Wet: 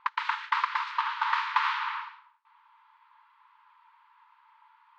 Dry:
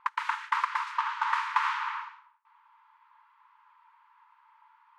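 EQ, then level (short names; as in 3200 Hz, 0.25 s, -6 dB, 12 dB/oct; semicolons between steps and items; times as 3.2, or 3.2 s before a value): synth low-pass 4100 Hz, resonance Q 1.9; 0.0 dB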